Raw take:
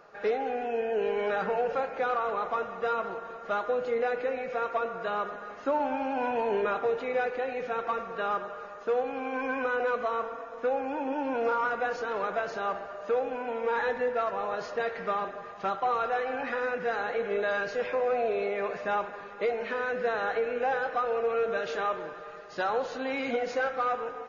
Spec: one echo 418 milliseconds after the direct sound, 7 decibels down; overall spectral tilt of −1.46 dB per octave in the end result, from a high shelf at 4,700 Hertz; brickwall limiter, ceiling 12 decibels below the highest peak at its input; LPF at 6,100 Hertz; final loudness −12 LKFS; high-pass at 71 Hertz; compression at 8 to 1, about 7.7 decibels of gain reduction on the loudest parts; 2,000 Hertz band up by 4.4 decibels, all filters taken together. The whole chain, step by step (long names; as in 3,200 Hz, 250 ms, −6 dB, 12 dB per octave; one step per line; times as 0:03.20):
high-pass filter 71 Hz
low-pass filter 6,100 Hz
parametric band 2,000 Hz +5 dB
high-shelf EQ 4,700 Hz +8 dB
downward compressor 8 to 1, threshold −31 dBFS
brickwall limiter −32.5 dBFS
single-tap delay 418 ms −7 dB
level +27.5 dB